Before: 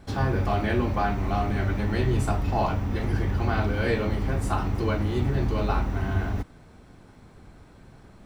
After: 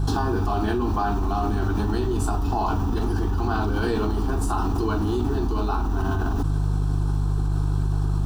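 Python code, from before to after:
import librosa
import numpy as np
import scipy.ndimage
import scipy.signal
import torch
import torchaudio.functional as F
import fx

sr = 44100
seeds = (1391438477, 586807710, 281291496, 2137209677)

y = fx.fixed_phaser(x, sr, hz=560.0, stages=6)
y = fx.dmg_buzz(y, sr, base_hz=50.0, harmonics=3, level_db=-41.0, tilt_db=-4, odd_only=False)
y = fx.env_flatten(y, sr, amount_pct=100)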